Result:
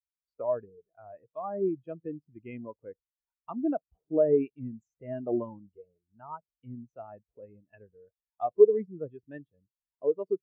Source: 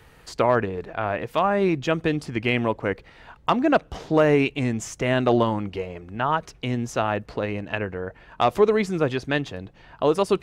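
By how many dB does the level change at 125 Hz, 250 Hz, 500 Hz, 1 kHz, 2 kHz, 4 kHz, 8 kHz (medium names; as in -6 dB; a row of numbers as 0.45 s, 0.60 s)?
-18.0 dB, -10.5 dB, -5.5 dB, -15.5 dB, under -25 dB, under -40 dB, under -40 dB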